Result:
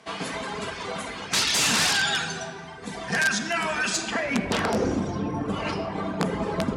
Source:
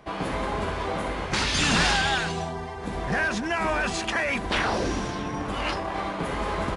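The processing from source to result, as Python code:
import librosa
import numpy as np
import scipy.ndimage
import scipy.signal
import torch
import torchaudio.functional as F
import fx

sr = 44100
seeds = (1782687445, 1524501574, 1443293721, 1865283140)

y = fx.dereverb_blind(x, sr, rt60_s=1.5)
y = fx.high_shelf(y, sr, hz=6200.0, db=10.5)
y = fx.dereverb_blind(y, sr, rt60_s=0.5)
y = fx.tilt_shelf(y, sr, db=fx.steps((0.0, -4.0), (3.96, 6.5)), hz=1100.0)
y = fx.room_shoebox(y, sr, seeds[0], volume_m3=3000.0, walls='mixed', distance_m=1.6)
y = (np.mod(10.0 ** (13.5 / 20.0) * y + 1.0, 2.0) - 1.0) / 10.0 ** (13.5 / 20.0)
y = scipy.signal.sosfilt(scipy.signal.cheby1(2, 1.0, [120.0, 7500.0], 'bandpass', fs=sr, output='sos'), y)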